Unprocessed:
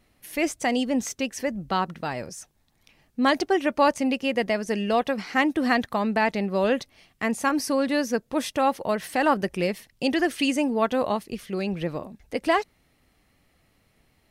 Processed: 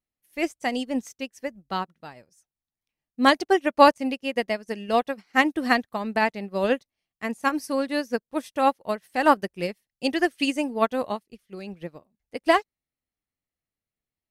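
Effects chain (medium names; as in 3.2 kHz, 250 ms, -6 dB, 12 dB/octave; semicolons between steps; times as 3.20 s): treble shelf 7.6 kHz +7 dB; upward expansion 2.5:1, over -40 dBFS; trim +6.5 dB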